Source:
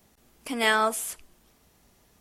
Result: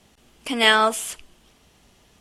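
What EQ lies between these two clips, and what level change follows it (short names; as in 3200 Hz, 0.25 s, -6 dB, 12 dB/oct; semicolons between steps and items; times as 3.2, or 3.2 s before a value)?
LPF 9700 Hz 12 dB/oct; bell 3000 Hz +7 dB 0.5 oct; +5.0 dB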